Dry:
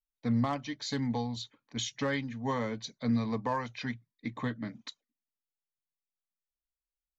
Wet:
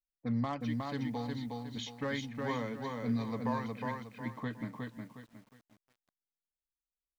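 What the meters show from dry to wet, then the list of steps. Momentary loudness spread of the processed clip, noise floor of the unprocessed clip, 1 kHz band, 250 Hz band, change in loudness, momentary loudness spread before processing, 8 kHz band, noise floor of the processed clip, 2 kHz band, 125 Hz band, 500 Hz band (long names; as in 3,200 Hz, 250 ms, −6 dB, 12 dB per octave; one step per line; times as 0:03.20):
9 LU, below −85 dBFS, −2.5 dB, −3.0 dB, −3.0 dB, 11 LU, can't be measured, below −85 dBFS, −3.0 dB, −3.0 dB, −2.5 dB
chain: low-pass that shuts in the quiet parts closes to 400 Hz, open at −27.5 dBFS
feedback echo at a low word length 362 ms, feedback 35%, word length 10 bits, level −3 dB
level −4.5 dB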